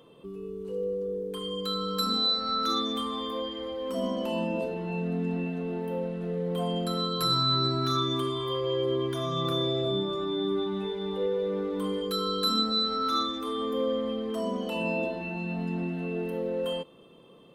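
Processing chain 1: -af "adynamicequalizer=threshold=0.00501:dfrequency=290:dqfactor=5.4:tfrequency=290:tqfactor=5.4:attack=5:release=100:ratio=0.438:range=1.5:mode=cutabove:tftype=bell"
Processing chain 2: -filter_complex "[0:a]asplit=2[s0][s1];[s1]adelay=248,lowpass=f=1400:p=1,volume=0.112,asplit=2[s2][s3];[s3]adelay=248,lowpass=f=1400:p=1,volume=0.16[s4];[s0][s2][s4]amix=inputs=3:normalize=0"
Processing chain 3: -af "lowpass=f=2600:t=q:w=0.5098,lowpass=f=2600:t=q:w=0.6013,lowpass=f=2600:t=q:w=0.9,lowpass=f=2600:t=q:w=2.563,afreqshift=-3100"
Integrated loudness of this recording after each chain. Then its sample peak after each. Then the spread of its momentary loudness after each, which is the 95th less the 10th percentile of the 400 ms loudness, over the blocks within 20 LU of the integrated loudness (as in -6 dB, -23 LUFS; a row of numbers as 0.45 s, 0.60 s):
-29.5 LUFS, -29.0 LUFS, -27.5 LUFS; -15.0 dBFS, -15.0 dBFS, -17.5 dBFS; 9 LU, 8 LU, 5 LU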